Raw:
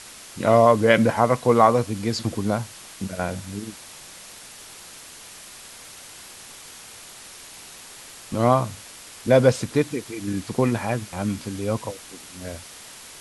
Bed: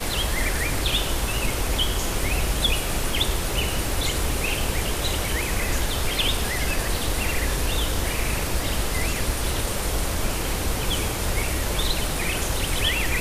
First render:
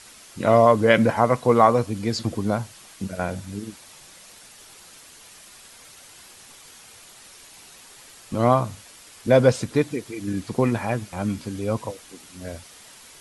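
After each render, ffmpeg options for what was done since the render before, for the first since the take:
-af "afftdn=nr=6:nf=-43"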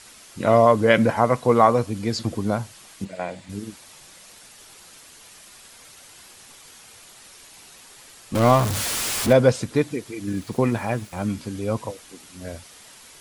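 -filter_complex "[0:a]asplit=3[a][b][c];[a]afade=t=out:st=3.04:d=0.02[d];[b]highpass=230,equalizer=f=230:t=q:w=4:g=-7,equalizer=f=400:t=q:w=4:g=-6,equalizer=f=1.4k:t=q:w=4:g=-9,equalizer=f=2k:t=q:w=4:g=5,equalizer=f=5.9k:t=q:w=4:g=-10,lowpass=f=7.9k:w=0.5412,lowpass=f=7.9k:w=1.3066,afade=t=in:st=3.04:d=0.02,afade=t=out:st=3.48:d=0.02[e];[c]afade=t=in:st=3.48:d=0.02[f];[d][e][f]amix=inputs=3:normalize=0,asettb=1/sr,asplit=3[g][h][i];[g]atrim=end=8.354[j];[h]atrim=start=8.35:end=9.33,asetpts=PTS-STARTPTS,afade=t=in:d=0.004:c=qsin,afade=t=out:st=0.976:d=0.004:c=qsin,aeval=exprs='val(0)+0.5*0.0944*sgn(val(0))':c=same[k];[i]atrim=start=9.326[l];[j][k]acrossfade=d=0.004:c1=hsin:c2=qsin[m];[m][l]acrossfade=d=0.004:c1=qsin:c2=hsin,asettb=1/sr,asplit=3[n][o][p];[n]atrim=end=10.274[q];[o]atrim=start=10.27:end=11.26,asetpts=PTS-STARTPTS,afade=t=in:d=0.004:c=qsin,afade=t=out:st=0.986:d=0.004:c=qsin,aeval=exprs='val(0)*gte(abs(val(0)),0.00531)':c=same[r];[p]atrim=start=11.256[s];[q][r]acrossfade=d=0.004:c1=hsin:c2=qsin[t];[t][s]acrossfade=d=0.004:c1=qsin:c2=hsin"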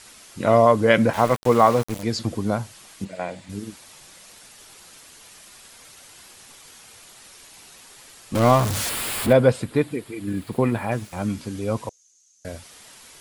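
-filter_complex "[0:a]asettb=1/sr,asplit=3[a][b][c];[a]atrim=end=1.134[d];[b]atrim=start=1.13:end=2.03,asetpts=PTS-STARTPTS,afade=t=in:d=0.004:c=qsin,afade=t=out:st=0.896:d=0.004:c=qsin,aeval=exprs='val(0)*gte(abs(val(0)),0.0422)':c=same[e];[c]atrim=start=2.026[f];[d][e]acrossfade=d=0.004:c1=hsin:c2=qsin[g];[g][f]acrossfade=d=0.004:c1=qsin:c2=hsin,asettb=1/sr,asplit=3[h][i][j];[h]atrim=end=8.894[k];[i]atrim=start=8.89:end=10.92,asetpts=PTS-STARTPTS,afade=t=in:d=0.004:c=qsin,afade=t=out:st=2.026:d=0.004:c=qsin,equalizer=f=6k:t=o:w=0.5:g=-13[l];[j]atrim=start=10.916[m];[k][l]acrossfade=d=0.004:c1=hsin:c2=qsin[n];[n][m]acrossfade=d=0.004:c1=qsin:c2=hsin,asettb=1/sr,asplit=3[o][p][q];[o]atrim=end=11.894[r];[p]atrim=start=11.89:end=12.45,asetpts=PTS-STARTPTS,afade=t=in:d=0.004:c=qsin,afade=t=out:st=0.556:d=0.004:c=qsin,bandpass=f=6.4k:t=q:w=12[s];[q]atrim=start=12.446[t];[r][s]acrossfade=d=0.004:c1=hsin:c2=qsin[u];[u][t]acrossfade=d=0.004:c1=qsin:c2=hsin"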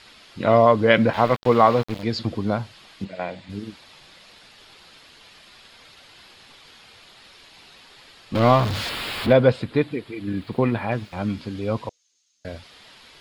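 -af "highshelf=f=5.9k:t=q:w=1.5:g=-13,bandreject=f=5.9k:w=12"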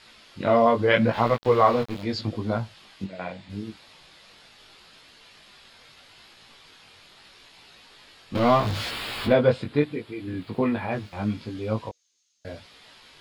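-af "flanger=delay=17.5:depth=3.9:speed=0.78"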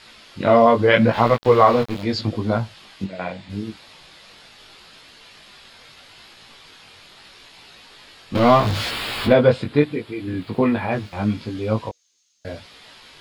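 -af "volume=5.5dB,alimiter=limit=-2dB:level=0:latency=1"

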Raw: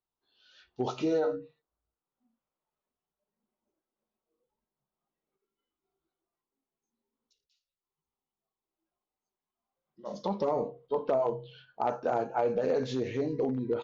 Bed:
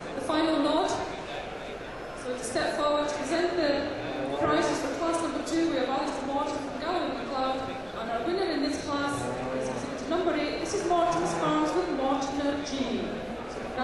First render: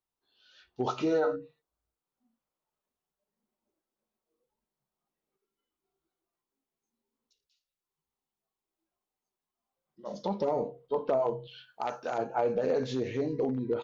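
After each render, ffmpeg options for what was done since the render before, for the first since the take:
-filter_complex "[0:a]asettb=1/sr,asplit=3[a][b][c];[a]atrim=end=0.864[d];[b]atrim=start=0.86:end=1.36,asetpts=PTS-STARTPTS,afade=t=in:d=0.004:c=qsin,afade=t=out:st=0.496:d=0.004:c=qsin,equalizer=f=1.3k:w=1.3:g=7[e];[c]atrim=start=1.356[f];[d][e]acrossfade=d=0.004:c1=hsin:c2=qsin[g];[g][f]acrossfade=d=0.004:c1=qsin:c2=hsin,asettb=1/sr,asplit=3[h][i][j];[h]atrim=end=10.084[k];[i]atrim=start=10.08:end=10.84,asetpts=PTS-STARTPTS,afade=t=in:d=0.004:c=qsin,afade=t=out:st=0.756:d=0.004:c=qsin,bandreject=f=1.1k:w=6.8[l];[j]atrim=start=10.836[m];[k][l]acrossfade=d=0.004:c1=hsin:c2=qsin[n];[n][m]acrossfade=d=0.004:c1=qsin:c2=hsin,asettb=1/sr,asplit=3[o][p][q];[o]atrim=end=11.474[r];[p]atrim=start=11.47:end=12.18,asetpts=PTS-STARTPTS,afade=t=in:d=0.004:c=qsin,afade=t=out:st=0.706:d=0.004:c=qsin,tiltshelf=f=1.4k:g=-8[s];[q]atrim=start=12.176[t];[r][s]acrossfade=d=0.004:c1=hsin:c2=qsin[u];[u][t]acrossfade=d=0.004:c1=qsin:c2=hsin"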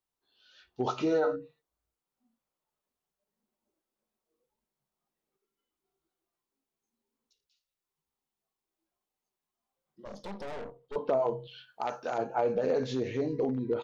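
-filter_complex "[0:a]asettb=1/sr,asplit=3[a][b][c];[a]atrim=end=10.054[d];[b]atrim=start=10.05:end=10.96,asetpts=PTS-STARTPTS,afade=t=in:d=0.004:c=qsin,afade=t=out:st=0.906:d=0.004:c=qsin,aeval=exprs='(tanh(79.4*val(0)+0.8)-tanh(0.8))/79.4':c=same[e];[c]atrim=start=10.956[f];[d][e]acrossfade=d=0.004:c1=hsin:c2=qsin[g];[g][f]acrossfade=d=0.004:c1=qsin:c2=hsin"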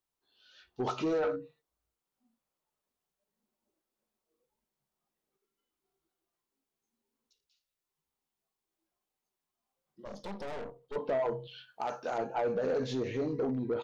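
-af "asoftclip=type=tanh:threshold=-25dB"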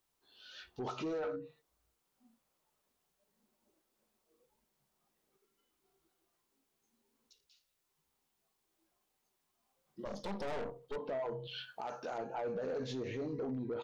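-filter_complex "[0:a]asplit=2[a][b];[b]acompressor=threshold=-41dB:ratio=6,volume=2dB[c];[a][c]amix=inputs=2:normalize=0,alimiter=level_in=9dB:limit=-24dB:level=0:latency=1:release=317,volume=-9dB"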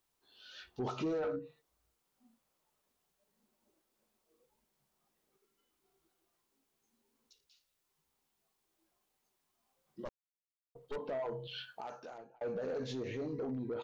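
-filter_complex "[0:a]asettb=1/sr,asplit=3[a][b][c];[a]atrim=end=0.794[d];[b]atrim=start=0.79:end=1.39,asetpts=PTS-STARTPTS,afade=t=in:d=0.004:c=qsin,afade=t=out:st=0.596:d=0.004:c=qsin,equalizer=f=120:w=0.34:g=5.5[e];[c]atrim=start=1.386[f];[d][e]acrossfade=d=0.004:c1=hsin:c2=qsin[g];[g][f]acrossfade=d=0.004:c1=qsin:c2=hsin,asplit=4[h][i][j][k];[h]atrim=end=10.09,asetpts=PTS-STARTPTS,afade=t=out:st=10.086:d=0.004:c=hsin[l];[i]atrim=start=10.09:end=10.75,asetpts=PTS-STARTPTS,volume=0[m];[j]atrim=start=10.75:end=12.41,asetpts=PTS-STARTPTS,afade=t=in:d=0.004:c=hsin,afade=t=out:st=0.89:d=0.77[n];[k]atrim=start=12.41,asetpts=PTS-STARTPTS,afade=t=in:d=0.004:c=hsin[o];[l][m][n][o]concat=n=4:v=0:a=1"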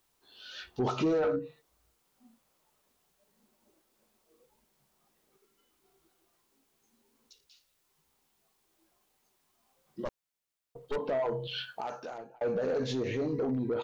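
-af "volume=7.5dB"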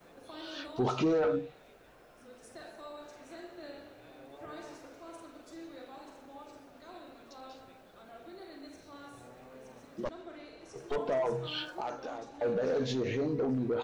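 -filter_complex "[1:a]volume=-20.5dB[a];[0:a][a]amix=inputs=2:normalize=0"

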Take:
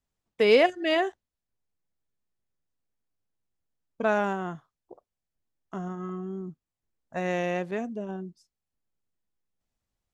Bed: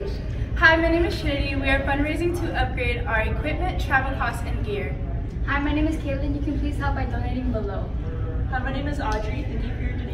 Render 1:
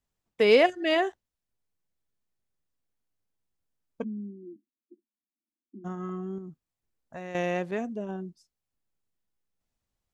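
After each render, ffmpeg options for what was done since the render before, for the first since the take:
-filter_complex "[0:a]asplit=3[a][b][c];[a]afade=t=out:st=4.02:d=0.02[d];[b]asuperpass=centerf=270:order=12:qfactor=1.8,afade=t=in:st=4.02:d=0.02,afade=t=out:st=5.84:d=0.02[e];[c]afade=t=in:st=5.84:d=0.02[f];[d][e][f]amix=inputs=3:normalize=0,asettb=1/sr,asplit=3[g][h][i];[g]atrim=end=6.384[j];[h]atrim=start=6.38:end=7.35,asetpts=PTS-STARTPTS,afade=t=in:d=0.004:c=qsin,afade=t=out:st=0.966:d=0.004:c=qsin,acompressor=threshold=-40dB:ratio=2.5:attack=3.2:release=140:knee=1:detection=peak[k];[i]atrim=start=7.346[l];[j][k]acrossfade=d=0.004:c1=hsin:c2=qsin[m];[m][l]acrossfade=d=0.004:c1=qsin:c2=hsin"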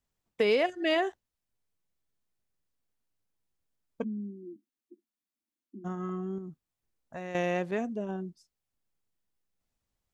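-af "acompressor=threshold=-23dB:ratio=4"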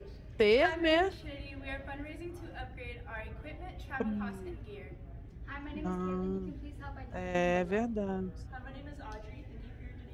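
-filter_complex "[1:a]volume=-19.5dB[a];[0:a][a]amix=inputs=2:normalize=0"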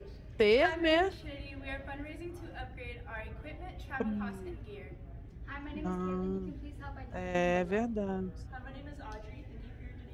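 -af anull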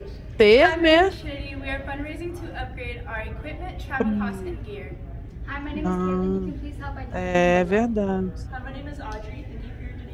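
-af "volume=11dB"

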